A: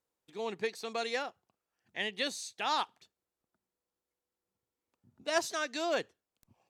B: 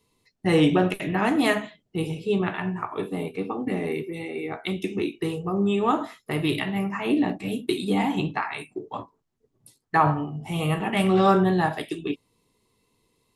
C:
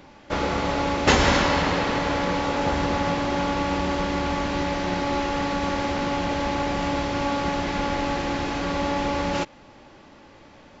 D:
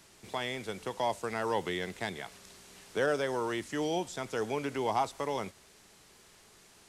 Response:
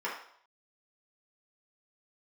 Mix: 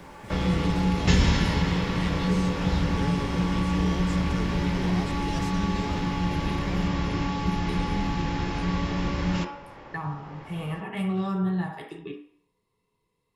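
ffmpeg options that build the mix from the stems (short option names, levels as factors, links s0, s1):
-filter_complex "[0:a]volume=0.75[s0];[1:a]volume=0.237,asplit=2[s1][s2];[s2]volume=0.631[s3];[2:a]highshelf=f=4900:g=-4.5,volume=0.794,asplit=2[s4][s5];[s5]volume=0.708[s6];[3:a]acrusher=bits=10:mix=0:aa=0.000001,volume=1.19[s7];[4:a]atrim=start_sample=2205[s8];[s3][s6]amix=inputs=2:normalize=0[s9];[s9][s8]afir=irnorm=-1:irlink=0[s10];[s0][s1][s4][s7][s10]amix=inputs=5:normalize=0,acrossover=split=270|3000[s11][s12][s13];[s12]acompressor=threshold=0.0178:ratio=5[s14];[s11][s14][s13]amix=inputs=3:normalize=0,bass=f=250:g=7,treble=f=4000:g=-4"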